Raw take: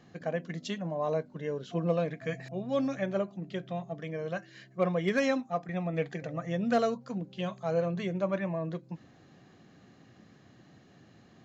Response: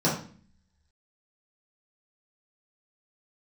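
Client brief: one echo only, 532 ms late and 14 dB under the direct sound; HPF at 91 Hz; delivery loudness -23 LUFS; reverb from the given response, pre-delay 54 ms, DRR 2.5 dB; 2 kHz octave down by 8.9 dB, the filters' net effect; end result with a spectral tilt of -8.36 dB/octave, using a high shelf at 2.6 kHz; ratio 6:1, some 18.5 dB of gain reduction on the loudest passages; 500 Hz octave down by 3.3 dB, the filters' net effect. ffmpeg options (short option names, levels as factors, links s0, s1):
-filter_complex "[0:a]highpass=91,equalizer=f=500:t=o:g=-3,equalizer=f=2000:t=o:g=-7.5,highshelf=f=2600:g=-8.5,acompressor=threshold=0.00501:ratio=6,aecho=1:1:532:0.2,asplit=2[s0][s1];[1:a]atrim=start_sample=2205,adelay=54[s2];[s1][s2]afir=irnorm=-1:irlink=0,volume=0.158[s3];[s0][s3]amix=inputs=2:normalize=0,volume=7.94"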